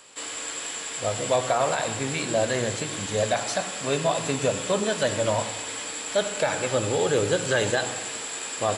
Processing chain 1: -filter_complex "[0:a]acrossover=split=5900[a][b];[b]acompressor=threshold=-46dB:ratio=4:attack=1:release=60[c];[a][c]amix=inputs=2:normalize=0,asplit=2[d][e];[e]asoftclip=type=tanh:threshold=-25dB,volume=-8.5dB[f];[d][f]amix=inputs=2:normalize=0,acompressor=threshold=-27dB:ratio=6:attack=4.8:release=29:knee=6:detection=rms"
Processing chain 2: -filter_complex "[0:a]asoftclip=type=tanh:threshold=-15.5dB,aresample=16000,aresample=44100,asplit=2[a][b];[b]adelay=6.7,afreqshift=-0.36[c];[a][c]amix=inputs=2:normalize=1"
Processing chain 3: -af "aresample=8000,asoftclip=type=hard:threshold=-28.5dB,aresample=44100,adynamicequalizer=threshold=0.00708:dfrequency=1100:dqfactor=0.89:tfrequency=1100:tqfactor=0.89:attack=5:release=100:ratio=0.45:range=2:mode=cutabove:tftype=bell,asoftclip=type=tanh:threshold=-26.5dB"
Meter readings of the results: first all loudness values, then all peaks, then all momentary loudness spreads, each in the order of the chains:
-30.0, -30.5, -34.5 LUFS; -17.5, -15.0, -28.0 dBFS; 3, 8, 4 LU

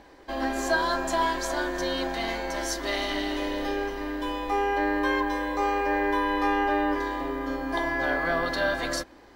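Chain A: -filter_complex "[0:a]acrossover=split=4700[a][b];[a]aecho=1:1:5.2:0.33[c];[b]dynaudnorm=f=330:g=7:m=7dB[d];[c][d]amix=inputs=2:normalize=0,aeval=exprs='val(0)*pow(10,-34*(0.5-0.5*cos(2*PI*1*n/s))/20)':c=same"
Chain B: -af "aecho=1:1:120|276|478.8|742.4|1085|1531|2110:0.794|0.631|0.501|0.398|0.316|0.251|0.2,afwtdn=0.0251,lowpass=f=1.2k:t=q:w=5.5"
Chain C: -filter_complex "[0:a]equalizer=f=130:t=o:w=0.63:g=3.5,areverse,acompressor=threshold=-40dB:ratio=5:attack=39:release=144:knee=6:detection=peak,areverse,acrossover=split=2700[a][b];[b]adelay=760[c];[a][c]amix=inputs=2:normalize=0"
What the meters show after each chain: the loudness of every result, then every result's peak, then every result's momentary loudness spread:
-32.0, -18.5, -39.0 LUFS; -16.0, -4.5, -25.5 dBFS; 19, 8, 2 LU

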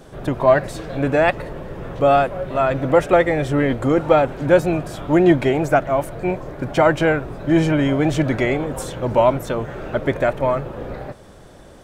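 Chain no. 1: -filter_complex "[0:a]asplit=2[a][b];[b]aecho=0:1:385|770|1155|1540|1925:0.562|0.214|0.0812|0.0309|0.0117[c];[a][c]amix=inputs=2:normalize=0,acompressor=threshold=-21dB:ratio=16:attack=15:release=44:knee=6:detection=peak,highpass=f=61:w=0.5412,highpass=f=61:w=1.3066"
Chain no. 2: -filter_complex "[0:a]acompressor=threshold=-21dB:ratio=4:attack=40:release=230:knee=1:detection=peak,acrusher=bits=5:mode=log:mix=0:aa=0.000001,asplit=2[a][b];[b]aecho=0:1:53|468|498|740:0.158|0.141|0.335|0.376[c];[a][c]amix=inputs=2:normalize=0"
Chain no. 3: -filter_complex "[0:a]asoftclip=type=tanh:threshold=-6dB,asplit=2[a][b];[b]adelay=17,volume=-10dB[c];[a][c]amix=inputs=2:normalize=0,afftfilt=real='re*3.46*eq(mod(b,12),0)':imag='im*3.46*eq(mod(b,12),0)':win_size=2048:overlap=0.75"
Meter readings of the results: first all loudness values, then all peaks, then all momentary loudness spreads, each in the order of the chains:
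-23.5, -23.0, -22.0 LUFS; -9.0, -6.5, -2.5 dBFS; 3, 6, 17 LU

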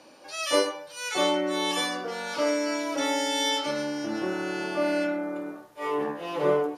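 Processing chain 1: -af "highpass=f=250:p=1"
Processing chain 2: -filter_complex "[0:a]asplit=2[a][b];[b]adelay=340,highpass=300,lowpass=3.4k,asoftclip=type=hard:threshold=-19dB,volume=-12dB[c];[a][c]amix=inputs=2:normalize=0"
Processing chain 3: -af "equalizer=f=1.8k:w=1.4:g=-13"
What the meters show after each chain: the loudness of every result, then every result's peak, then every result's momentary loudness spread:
-28.5, -27.5, -29.5 LUFS; -11.0, -10.0, -12.0 dBFS; 8, 8, 8 LU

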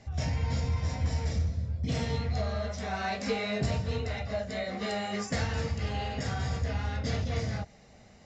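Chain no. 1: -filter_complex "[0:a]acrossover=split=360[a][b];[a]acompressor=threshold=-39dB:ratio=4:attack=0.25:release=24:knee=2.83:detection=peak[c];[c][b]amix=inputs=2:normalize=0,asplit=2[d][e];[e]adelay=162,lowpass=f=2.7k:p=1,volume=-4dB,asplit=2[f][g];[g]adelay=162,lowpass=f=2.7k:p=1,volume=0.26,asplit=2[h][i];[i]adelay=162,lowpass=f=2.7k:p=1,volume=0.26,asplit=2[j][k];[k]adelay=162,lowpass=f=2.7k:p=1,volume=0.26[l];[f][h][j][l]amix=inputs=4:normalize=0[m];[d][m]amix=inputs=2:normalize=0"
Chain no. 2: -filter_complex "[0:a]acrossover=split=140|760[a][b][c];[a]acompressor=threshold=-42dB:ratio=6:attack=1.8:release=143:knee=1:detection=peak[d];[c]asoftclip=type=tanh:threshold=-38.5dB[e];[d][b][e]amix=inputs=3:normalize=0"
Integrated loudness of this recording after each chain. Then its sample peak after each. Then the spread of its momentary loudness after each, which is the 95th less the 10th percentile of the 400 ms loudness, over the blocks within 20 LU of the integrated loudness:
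-35.0, -36.0 LUFS; -19.5, -21.0 dBFS; 7, 5 LU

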